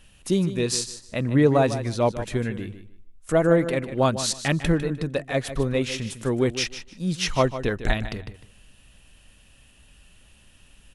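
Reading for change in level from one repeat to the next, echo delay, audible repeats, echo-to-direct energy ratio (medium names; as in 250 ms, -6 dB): -14.0 dB, 152 ms, 2, -12.0 dB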